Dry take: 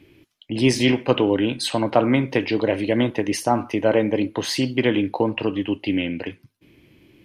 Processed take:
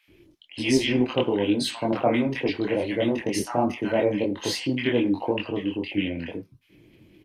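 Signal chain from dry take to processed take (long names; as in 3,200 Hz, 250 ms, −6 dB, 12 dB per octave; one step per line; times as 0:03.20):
pitch vibrato 7.3 Hz 20 cents
multi-voice chorus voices 6, 1.2 Hz, delay 23 ms, depth 3.3 ms
multiband delay without the direct sound highs, lows 80 ms, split 1,100 Hz
0:01.92–0:02.50: multiband upward and downward expander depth 40%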